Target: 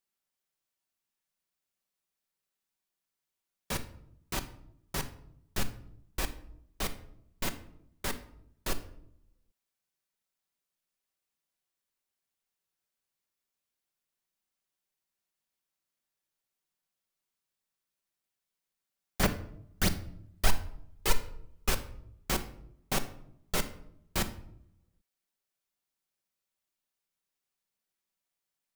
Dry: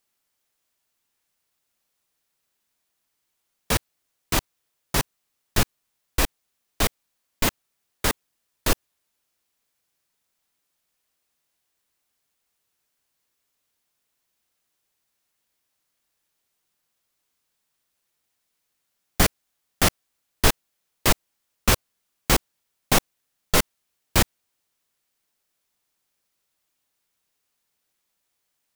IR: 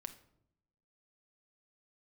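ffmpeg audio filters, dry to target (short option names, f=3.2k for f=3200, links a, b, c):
-filter_complex "[0:a]asettb=1/sr,asplit=3[a][b][c];[a]atrim=end=19.234[d];[b]atrim=start=19.23:end=21.7,asetpts=PTS-STARTPTS,afade=t=in:d=0.004:c=qsin,afade=t=out:st=2.466:d=0.004:c=qsin,aphaser=in_gain=1:out_gain=1:delay=2.5:decay=0.63:speed=1.4:type=sinusoidal[e];[c]atrim=start=21.696[f];[d][e]acrossfade=d=0.004:c1=hsin:c2=qsin[g];[g][f]acrossfade=d=0.004:c1=qsin:c2=hsin[h];[1:a]atrim=start_sample=2205[i];[h][i]afir=irnorm=-1:irlink=0,volume=-7.5dB"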